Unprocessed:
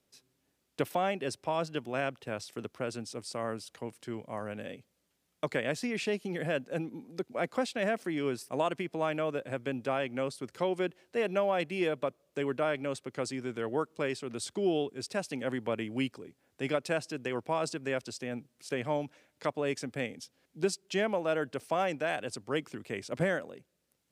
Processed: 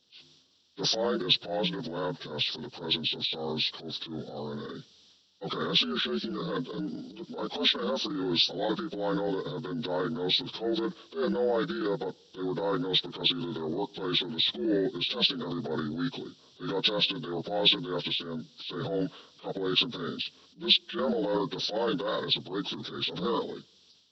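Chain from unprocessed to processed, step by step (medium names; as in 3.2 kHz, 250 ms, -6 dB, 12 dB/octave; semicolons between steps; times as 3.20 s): frequency axis rescaled in octaves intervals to 77%; transient shaper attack -9 dB, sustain +9 dB; resonant high shelf 2.7 kHz +8 dB, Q 3; trim +3 dB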